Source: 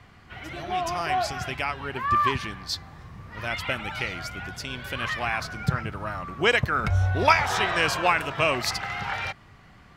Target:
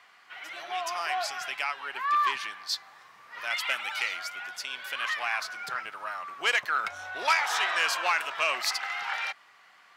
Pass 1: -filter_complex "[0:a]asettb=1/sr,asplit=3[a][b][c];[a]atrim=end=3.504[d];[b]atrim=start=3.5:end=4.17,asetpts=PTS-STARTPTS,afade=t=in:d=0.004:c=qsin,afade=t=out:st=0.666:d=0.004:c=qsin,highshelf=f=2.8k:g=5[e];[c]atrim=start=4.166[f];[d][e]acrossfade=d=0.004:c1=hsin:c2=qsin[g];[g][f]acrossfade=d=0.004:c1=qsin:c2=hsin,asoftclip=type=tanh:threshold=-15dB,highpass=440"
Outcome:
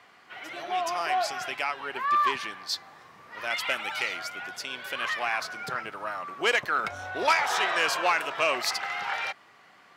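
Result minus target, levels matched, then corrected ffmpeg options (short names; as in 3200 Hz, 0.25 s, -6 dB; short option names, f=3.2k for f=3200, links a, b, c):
500 Hz band +6.5 dB
-filter_complex "[0:a]asettb=1/sr,asplit=3[a][b][c];[a]atrim=end=3.504[d];[b]atrim=start=3.5:end=4.17,asetpts=PTS-STARTPTS,afade=t=in:d=0.004:c=qsin,afade=t=out:st=0.666:d=0.004:c=qsin,highshelf=f=2.8k:g=5[e];[c]atrim=start=4.166[f];[d][e]acrossfade=d=0.004:c1=hsin:c2=qsin[g];[g][f]acrossfade=d=0.004:c1=qsin:c2=hsin,asoftclip=type=tanh:threshold=-15dB,highpass=930"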